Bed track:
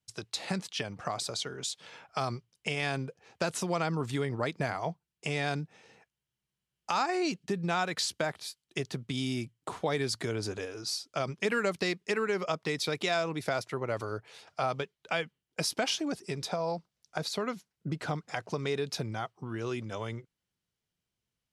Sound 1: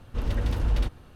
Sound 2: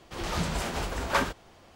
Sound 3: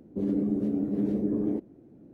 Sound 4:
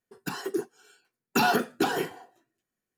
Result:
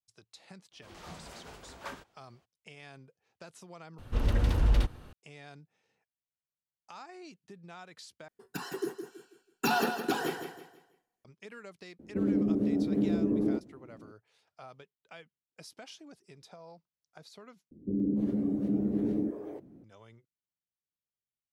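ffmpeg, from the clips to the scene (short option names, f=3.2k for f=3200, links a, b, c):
-filter_complex "[3:a]asplit=2[a][b];[0:a]volume=-18.5dB[c];[2:a]highpass=f=94:p=1[d];[4:a]aecho=1:1:163|326|489|652:0.398|0.135|0.046|0.0156[e];[b]acrossover=split=440[f][g];[g]adelay=290[h];[f][h]amix=inputs=2:normalize=0[i];[c]asplit=4[j][k][l][m];[j]atrim=end=3.984[n];[1:a]atrim=end=1.15[o];[k]atrim=start=5.126:end=8.284[p];[e]atrim=end=2.97,asetpts=PTS-STARTPTS,volume=-5dB[q];[l]atrim=start=11.246:end=17.714[r];[i]atrim=end=2.13,asetpts=PTS-STARTPTS,volume=-1dB[s];[m]atrim=start=19.836[t];[d]atrim=end=1.75,asetpts=PTS-STARTPTS,volume=-16.5dB,afade=t=in:d=0.02,afade=t=out:st=1.73:d=0.02,adelay=710[u];[a]atrim=end=2.13,asetpts=PTS-STARTPTS,volume=-0.5dB,afade=t=in:d=0.004:c=hsin,afade=t=out:st=2.126:d=0.004:c=hsin,adelay=11990[v];[n][o]acrossfade=d=0.004:c1=hsin:c2=hsin[w];[w][p]acrossfade=d=0.004:c1=hsin:c2=hsin[x];[x][q]acrossfade=d=0.004:c1=hsin:c2=hsin[y];[y][r]acrossfade=d=0.004:c1=hsin:c2=hsin[z];[z][s]acrossfade=d=0.004:c1=hsin:c2=hsin[aa];[aa][t]acrossfade=d=0.004:c1=hsin:c2=hsin[ab];[ab][u][v]amix=inputs=3:normalize=0"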